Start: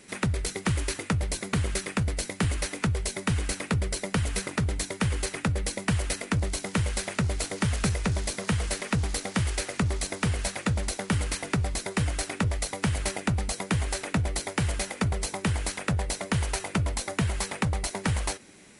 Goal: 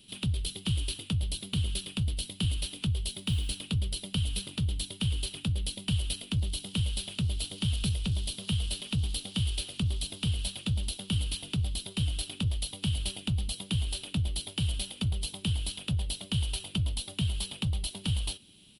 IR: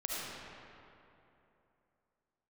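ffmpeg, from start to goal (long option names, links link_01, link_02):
-filter_complex "[0:a]firequalizer=gain_entry='entry(110,0);entry(440,-14);entry(1300,-17);entry(2000,-21);entry(3000,9);entry(6400,-14);entry(11000,2)':delay=0.05:min_phase=1,asettb=1/sr,asplit=3[link_01][link_02][link_03];[link_01]atrim=end=3.084[link_04];[link_02]atrim=start=3.08:end=3.61,asetpts=PTS-STARTPTS,afade=type=in:duration=0.004:curve=qsin,afade=type=out:start_time=0.526:duration=0.004:curve=qsin,acrusher=bits=8:mode=log:mix=0:aa=0.000001[link_05];[link_03]atrim=start=3.606[link_06];[link_04][link_05]acrossfade=duration=0.004:curve1=hsin:curve2=qsin[link_07];[link_07][link_06]acrossfade=duration=0.004:curve1=qsin:curve2=hsin,volume=-1.5dB"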